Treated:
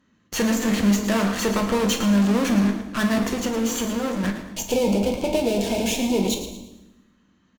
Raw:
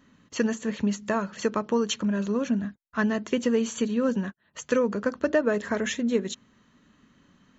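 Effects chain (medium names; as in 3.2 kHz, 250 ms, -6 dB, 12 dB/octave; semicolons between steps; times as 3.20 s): in parallel at -7.5 dB: fuzz box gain 41 dB, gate -47 dBFS; 3.24–4.24 s: on the sum: compression, threshold -20 dBFS, peak gain reduction 6 dB; Chebyshev shaper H 8 -16 dB, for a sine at -8 dBFS; 4.33–6.72 s: time-frequency box 1–2.1 kHz -19 dB; frequency-shifting echo 112 ms, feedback 33%, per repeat +47 Hz, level -11 dB; on a send at -4.5 dB: reverberation RT60 1.0 s, pre-delay 7 ms; on the sum: trim -5.5 dB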